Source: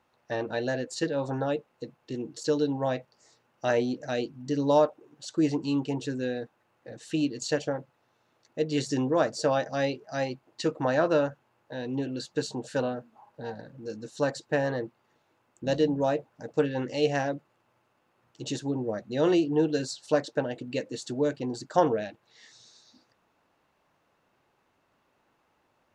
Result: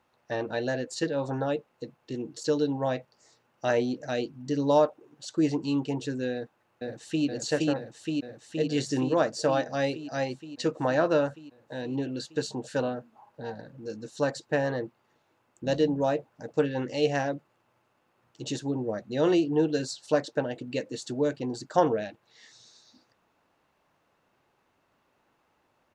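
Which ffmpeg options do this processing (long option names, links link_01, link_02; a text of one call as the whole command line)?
ffmpeg -i in.wav -filter_complex "[0:a]asplit=2[link_01][link_02];[link_02]afade=type=in:start_time=6.34:duration=0.01,afade=type=out:start_time=7.26:duration=0.01,aecho=0:1:470|940|1410|1880|2350|2820|3290|3760|4230|4700|5170|5640:0.944061|0.708046|0.531034|0.398276|0.298707|0.22403|0.168023|0.126017|0.0945127|0.0708845|0.0531634|0.0398725[link_03];[link_01][link_03]amix=inputs=2:normalize=0" out.wav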